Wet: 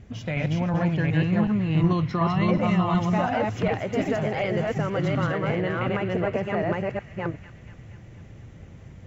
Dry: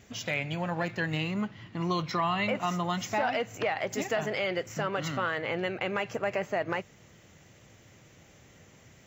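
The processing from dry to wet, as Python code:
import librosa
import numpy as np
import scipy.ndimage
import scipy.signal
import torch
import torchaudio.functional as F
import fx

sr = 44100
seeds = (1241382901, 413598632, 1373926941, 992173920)

y = fx.reverse_delay(x, sr, ms=368, wet_db=-0.5)
y = fx.riaa(y, sr, side='playback')
y = fx.echo_wet_highpass(y, sr, ms=238, feedback_pct=64, hz=1900.0, wet_db=-11.5)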